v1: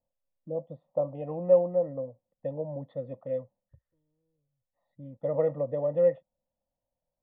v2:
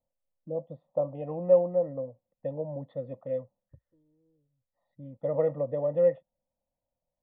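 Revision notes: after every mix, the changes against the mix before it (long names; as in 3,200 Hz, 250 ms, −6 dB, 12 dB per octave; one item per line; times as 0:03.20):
second voice: add parametric band 300 Hz +12.5 dB 1.7 octaves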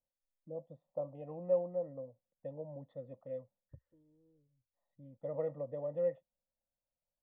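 first voice −10.5 dB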